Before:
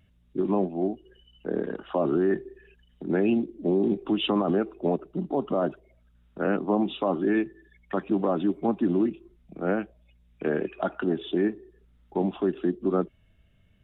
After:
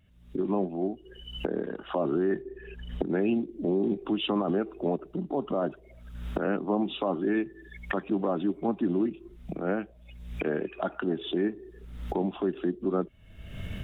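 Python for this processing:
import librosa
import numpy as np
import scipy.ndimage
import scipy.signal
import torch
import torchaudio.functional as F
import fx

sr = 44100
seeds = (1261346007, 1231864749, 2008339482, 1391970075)

y = fx.recorder_agc(x, sr, target_db=-24.5, rise_db_per_s=50.0, max_gain_db=30)
y = fx.high_shelf(y, sr, hz=3100.0, db=-11.5, at=(2.42, 3.05))
y = F.gain(torch.from_numpy(y), -3.0).numpy()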